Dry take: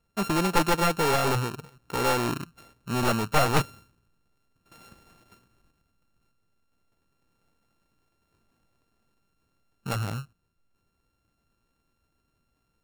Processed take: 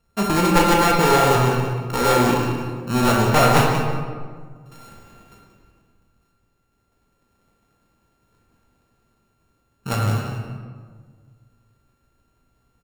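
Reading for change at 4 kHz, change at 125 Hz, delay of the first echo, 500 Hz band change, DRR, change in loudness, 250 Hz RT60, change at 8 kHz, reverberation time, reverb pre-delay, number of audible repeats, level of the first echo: +6.5 dB, +9.5 dB, 181 ms, +8.5 dB, -1.5 dB, +7.5 dB, 2.0 s, +7.0 dB, 1.7 s, 22 ms, 1, -10.5 dB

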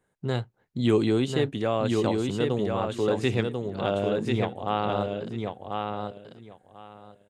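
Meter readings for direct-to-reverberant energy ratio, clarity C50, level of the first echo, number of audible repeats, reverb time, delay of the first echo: no reverb, no reverb, -4.0 dB, 3, no reverb, 1042 ms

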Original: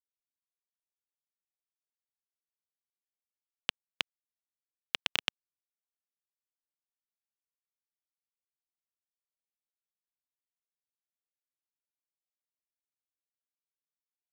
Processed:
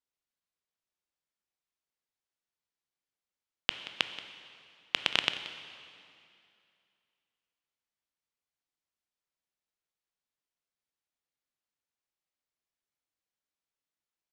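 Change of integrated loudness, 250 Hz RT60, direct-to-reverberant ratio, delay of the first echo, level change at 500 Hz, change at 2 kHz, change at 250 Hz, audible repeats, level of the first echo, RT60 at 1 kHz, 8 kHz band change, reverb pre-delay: +3.0 dB, 2.6 s, 8.5 dB, 179 ms, +5.0 dB, +4.5 dB, +5.0 dB, 1, -16.5 dB, 2.5 s, +0.5 dB, 7 ms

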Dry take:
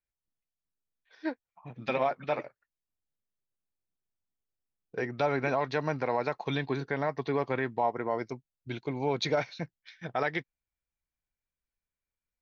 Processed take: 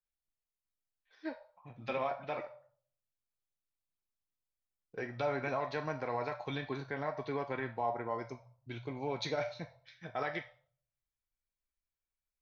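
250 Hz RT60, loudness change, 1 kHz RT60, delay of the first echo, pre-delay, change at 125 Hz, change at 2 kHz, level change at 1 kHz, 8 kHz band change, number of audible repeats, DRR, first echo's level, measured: 0.80 s, -6.5 dB, 0.50 s, no echo, 3 ms, -7.0 dB, -6.5 dB, -5.5 dB, no reading, no echo, 3.5 dB, no echo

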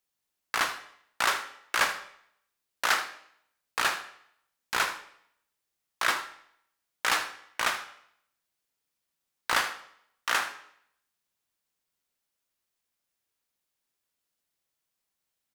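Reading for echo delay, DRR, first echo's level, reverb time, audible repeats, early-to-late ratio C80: 79 ms, 8.0 dB, -15.0 dB, 0.65 s, 1, 14.5 dB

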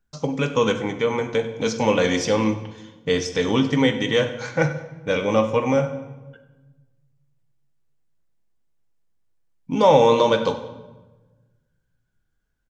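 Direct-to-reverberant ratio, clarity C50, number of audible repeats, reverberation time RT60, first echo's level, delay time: 7.0 dB, 10.5 dB, 1, 1.2 s, -17.5 dB, 95 ms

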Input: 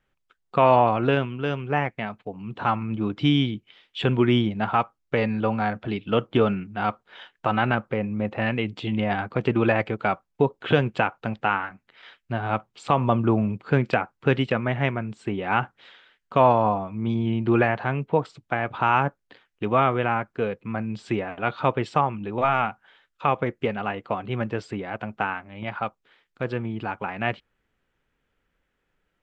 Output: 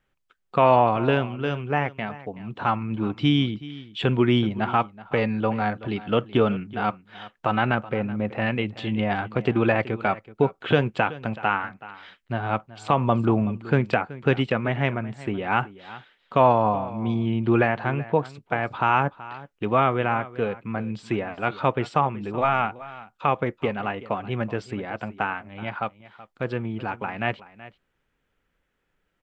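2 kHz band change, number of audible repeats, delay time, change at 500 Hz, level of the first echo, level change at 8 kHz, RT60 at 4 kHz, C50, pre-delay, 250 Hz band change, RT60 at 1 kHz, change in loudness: 0.0 dB, 1, 377 ms, 0.0 dB, -17.5 dB, no reading, no reverb, no reverb, no reverb, 0.0 dB, no reverb, 0.0 dB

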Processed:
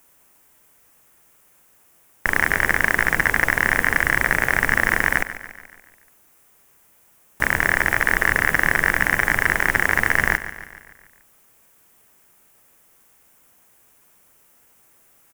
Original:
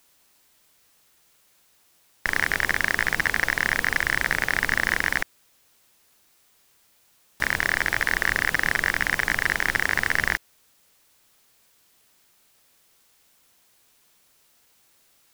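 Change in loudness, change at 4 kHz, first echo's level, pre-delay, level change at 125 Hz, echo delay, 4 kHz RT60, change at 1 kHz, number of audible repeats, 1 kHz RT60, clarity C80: +4.5 dB, -2.5 dB, -13.5 dB, no reverb, +7.0 dB, 143 ms, no reverb, +6.0 dB, 5, no reverb, no reverb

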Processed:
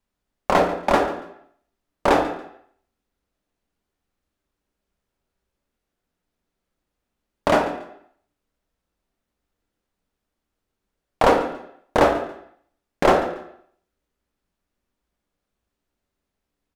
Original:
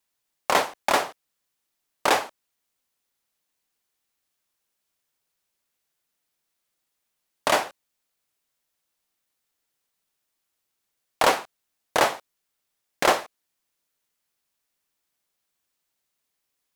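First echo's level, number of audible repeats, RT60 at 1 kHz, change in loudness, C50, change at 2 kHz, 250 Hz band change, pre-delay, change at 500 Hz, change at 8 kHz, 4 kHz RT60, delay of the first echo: -17.0 dB, 2, 0.75 s, +3.0 dB, 8.0 dB, -0.5 dB, +11.0 dB, 3 ms, +7.0 dB, -8.5 dB, 0.65 s, 141 ms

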